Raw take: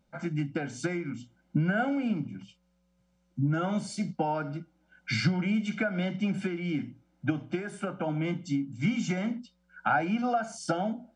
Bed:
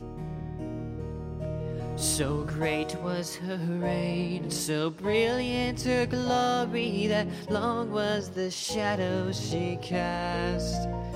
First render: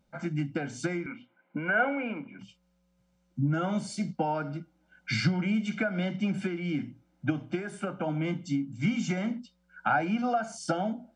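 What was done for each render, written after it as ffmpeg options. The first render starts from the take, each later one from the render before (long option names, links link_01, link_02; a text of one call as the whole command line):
ffmpeg -i in.wav -filter_complex "[0:a]asettb=1/sr,asplit=3[link_01][link_02][link_03];[link_01]atrim=end=1.064[link_04];[link_02]atrim=start=1.06:end=2.39,asetpts=PTS-STARTPTS,afade=type=in:duration=0.004:curve=qsin,afade=type=out:start_time=1.326:duration=0.004:curve=qsin,highpass=330,equalizer=frequency=480:width_type=q:width=4:gain=7,equalizer=frequency=1000:width_type=q:width=4:gain=8,equalizer=frequency=1500:width_type=q:width=4:gain=5,equalizer=frequency=2300:width_type=q:width=4:gain=9,lowpass=frequency=2900:width=0.5412,lowpass=frequency=2900:width=1.3066[link_05];[link_03]atrim=start=2.386[link_06];[link_04][link_05]acrossfade=duration=0.004:curve1=hsin:curve2=qsin[link_07];[link_07][link_06]acrossfade=duration=0.004:curve1=qsin:curve2=hsin" out.wav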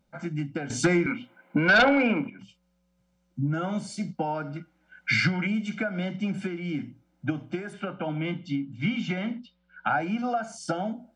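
ffmpeg -i in.wav -filter_complex "[0:a]asettb=1/sr,asplit=3[link_01][link_02][link_03];[link_01]atrim=end=0.704[link_04];[link_02]atrim=start=0.7:end=2.3,asetpts=PTS-STARTPTS,afade=type=in:duration=0.004:curve=qsin,afade=type=out:start_time=1.596:duration=0.004:curve=qsin,aeval=exprs='0.2*sin(PI/2*2.24*val(0)/0.2)':channel_layout=same[link_05];[link_03]atrim=start=2.296[link_06];[link_04][link_05]acrossfade=duration=0.004:curve1=hsin:curve2=qsin[link_07];[link_07][link_06]acrossfade=duration=0.004:curve1=qsin:curve2=hsin,asettb=1/sr,asplit=3[link_08][link_09][link_10];[link_08]atrim=end=4.564[link_11];[link_09]atrim=start=4.56:end=5.47,asetpts=PTS-STARTPTS,afade=type=in:duration=0.004:curve=qsin,afade=type=out:start_time=0.906:duration=0.004:curve=qsin,equalizer=frequency=1900:width_type=o:width=1.4:gain=10[link_12];[link_10]atrim=start=5.466[link_13];[link_11][link_12]acrossfade=duration=0.004:curve1=hsin:curve2=qsin[link_14];[link_14][link_13]acrossfade=duration=0.004:curve1=qsin:curve2=hsin,asettb=1/sr,asplit=3[link_15][link_16][link_17];[link_15]atrim=end=7.734[link_18];[link_16]atrim=start=7.73:end=9.89,asetpts=PTS-STARTPTS,afade=type=in:duration=0.004:curve=qsin,afade=type=out:start_time=2.156:duration=0.004:curve=qsin,lowpass=frequency=3300:width_type=q:width=1.8[link_19];[link_17]atrim=start=9.886[link_20];[link_18][link_19]acrossfade=duration=0.004:curve1=hsin:curve2=qsin[link_21];[link_21][link_20]acrossfade=duration=0.004:curve1=qsin:curve2=hsin" out.wav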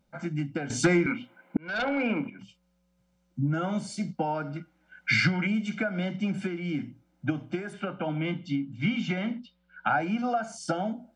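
ffmpeg -i in.wav -filter_complex "[0:a]asplit=2[link_01][link_02];[link_01]atrim=end=1.57,asetpts=PTS-STARTPTS,afade=type=out:start_time=1.566:duration=0.004:curve=hsin[link_03];[link_02]atrim=start=1.57,asetpts=PTS-STARTPTS,afade=type=in:duration=0.79[link_04];[link_03][link_04]concat=n=2:v=0:a=1" out.wav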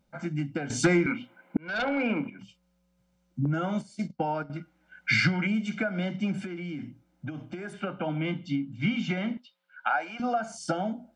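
ffmpeg -i in.wav -filter_complex "[0:a]asettb=1/sr,asplit=3[link_01][link_02][link_03];[link_01]atrim=end=3.454[link_04];[link_02]atrim=start=3.45:end=4.5,asetpts=PTS-STARTPTS,afade=type=in:duration=0.004:curve=qsin,afade=type=out:start_time=1.046:duration=0.004:curve=qsin,agate=range=-13dB:threshold=-34dB:ratio=16:release=100:detection=peak[link_05];[link_03]atrim=start=4.496[link_06];[link_04][link_05]acrossfade=duration=0.004:curve1=hsin:curve2=qsin[link_07];[link_07][link_06]acrossfade=duration=0.004:curve1=qsin:curve2=hsin,asettb=1/sr,asplit=3[link_08][link_09][link_10];[link_08]atrim=end=6.424[link_11];[link_09]atrim=start=6.42:end=7.72,asetpts=PTS-STARTPTS,afade=type=in:duration=0.004:curve=qsin,afade=type=out:start_time=1.296:duration=0.004:curve=qsin,acompressor=threshold=-32dB:ratio=6:attack=3.2:release=140:knee=1:detection=peak[link_12];[link_10]atrim=start=7.716[link_13];[link_11][link_12]acrossfade=duration=0.004:curve1=hsin:curve2=qsin[link_14];[link_14][link_13]acrossfade=duration=0.004:curve1=qsin:curve2=hsin,asettb=1/sr,asplit=3[link_15][link_16][link_17];[link_15]atrim=end=9.374[link_18];[link_16]atrim=start=9.37:end=10.2,asetpts=PTS-STARTPTS,afade=type=in:duration=0.004:curve=qsin,afade=type=out:start_time=0.826:duration=0.004:curve=qsin,highpass=650[link_19];[link_17]atrim=start=10.196[link_20];[link_18][link_19]acrossfade=duration=0.004:curve1=hsin:curve2=qsin[link_21];[link_21][link_20]acrossfade=duration=0.004:curve1=qsin:curve2=hsin" out.wav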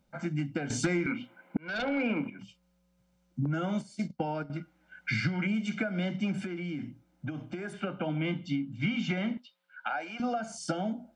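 ffmpeg -i in.wav -filter_complex "[0:a]acrossover=split=620|1700[link_01][link_02][link_03];[link_01]acompressor=threshold=-27dB:ratio=4[link_04];[link_02]acompressor=threshold=-42dB:ratio=4[link_05];[link_03]acompressor=threshold=-35dB:ratio=4[link_06];[link_04][link_05][link_06]amix=inputs=3:normalize=0" out.wav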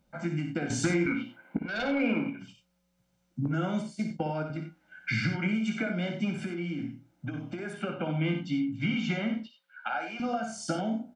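ffmpeg -i in.wav -filter_complex "[0:a]asplit=2[link_01][link_02];[link_02]adelay=18,volume=-11dB[link_03];[link_01][link_03]amix=inputs=2:normalize=0,aecho=1:1:58.31|90.38:0.398|0.316" out.wav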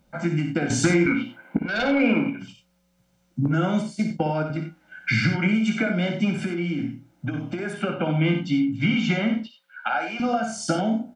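ffmpeg -i in.wav -af "volume=7.5dB" out.wav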